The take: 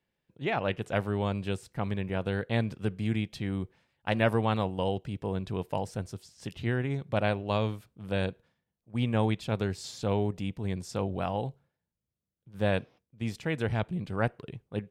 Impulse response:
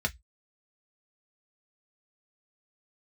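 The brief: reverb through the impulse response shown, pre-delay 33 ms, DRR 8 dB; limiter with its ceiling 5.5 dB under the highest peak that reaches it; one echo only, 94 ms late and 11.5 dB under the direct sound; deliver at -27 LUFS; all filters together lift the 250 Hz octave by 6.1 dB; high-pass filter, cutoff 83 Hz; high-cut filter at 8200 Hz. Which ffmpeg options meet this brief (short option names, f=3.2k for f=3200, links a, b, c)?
-filter_complex "[0:a]highpass=83,lowpass=8.2k,equalizer=f=250:t=o:g=8,alimiter=limit=-16dB:level=0:latency=1,aecho=1:1:94:0.266,asplit=2[a][b];[1:a]atrim=start_sample=2205,adelay=33[c];[b][c]afir=irnorm=-1:irlink=0,volume=-15dB[d];[a][d]amix=inputs=2:normalize=0,volume=1.5dB"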